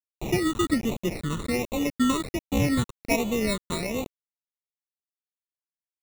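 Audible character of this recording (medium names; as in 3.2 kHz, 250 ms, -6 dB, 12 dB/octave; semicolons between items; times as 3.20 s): aliases and images of a low sample rate 1.6 kHz, jitter 0%; tremolo triangle 1.5 Hz, depth 35%; a quantiser's noise floor 6-bit, dither none; phasing stages 8, 1.3 Hz, lowest notch 670–1600 Hz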